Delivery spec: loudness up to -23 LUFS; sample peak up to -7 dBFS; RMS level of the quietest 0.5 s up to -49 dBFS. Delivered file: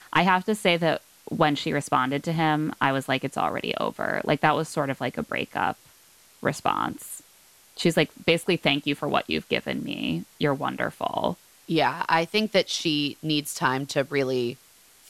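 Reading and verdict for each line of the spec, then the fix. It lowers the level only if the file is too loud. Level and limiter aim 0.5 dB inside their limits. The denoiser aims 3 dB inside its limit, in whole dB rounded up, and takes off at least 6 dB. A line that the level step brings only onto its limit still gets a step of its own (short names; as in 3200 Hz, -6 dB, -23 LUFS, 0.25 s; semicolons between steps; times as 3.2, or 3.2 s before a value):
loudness -25.5 LUFS: OK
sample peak -7.5 dBFS: OK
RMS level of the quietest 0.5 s -56 dBFS: OK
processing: none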